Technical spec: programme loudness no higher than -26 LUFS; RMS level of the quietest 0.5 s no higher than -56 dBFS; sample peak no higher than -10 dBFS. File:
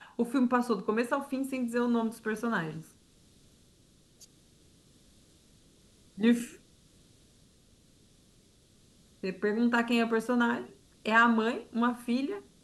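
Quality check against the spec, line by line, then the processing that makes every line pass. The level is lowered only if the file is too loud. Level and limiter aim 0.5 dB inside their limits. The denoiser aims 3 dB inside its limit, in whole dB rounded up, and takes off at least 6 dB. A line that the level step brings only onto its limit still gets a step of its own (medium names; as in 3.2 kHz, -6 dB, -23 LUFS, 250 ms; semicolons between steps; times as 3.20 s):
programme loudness -29.5 LUFS: pass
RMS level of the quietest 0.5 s -62 dBFS: pass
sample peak -10.5 dBFS: pass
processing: none needed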